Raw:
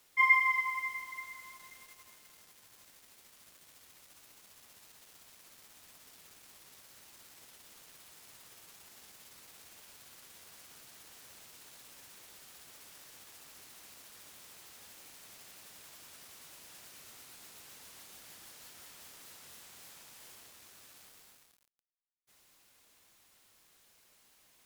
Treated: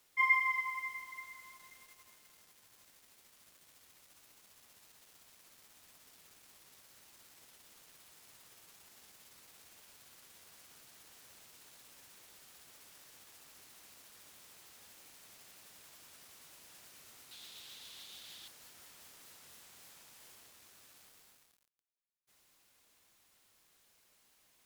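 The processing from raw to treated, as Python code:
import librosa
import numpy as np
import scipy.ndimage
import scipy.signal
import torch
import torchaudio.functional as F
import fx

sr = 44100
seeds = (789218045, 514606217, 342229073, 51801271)

y = fx.peak_eq(x, sr, hz=3600.0, db=14.5, octaves=0.79, at=(17.31, 18.48))
y = F.gain(torch.from_numpy(y), -4.0).numpy()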